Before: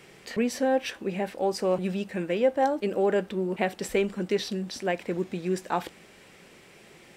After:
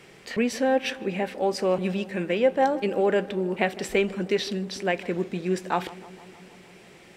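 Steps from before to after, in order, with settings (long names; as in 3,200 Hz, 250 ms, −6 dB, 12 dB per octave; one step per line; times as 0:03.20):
high-shelf EQ 10,000 Hz −5.5 dB
on a send: feedback echo with a low-pass in the loop 155 ms, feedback 78%, low-pass 1,500 Hz, level −18 dB
on the sum: dynamic equaliser 2,500 Hz, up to +4 dB, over −44 dBFS, Q 0.91
level +1.5 dB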